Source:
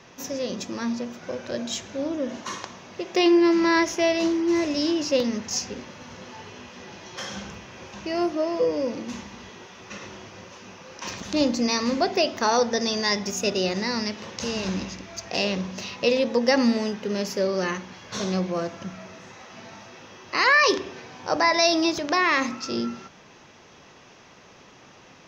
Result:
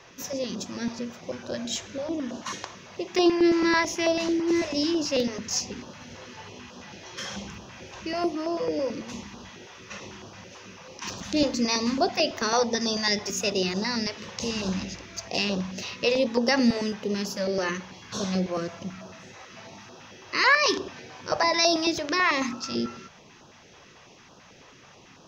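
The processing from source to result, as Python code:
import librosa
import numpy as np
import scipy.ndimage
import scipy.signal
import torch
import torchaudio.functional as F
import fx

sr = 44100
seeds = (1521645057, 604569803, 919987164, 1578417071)

y = fx.filter_held_notch(x, sr, hz=9.1, low_hz=210.0, high_hz=2100.0)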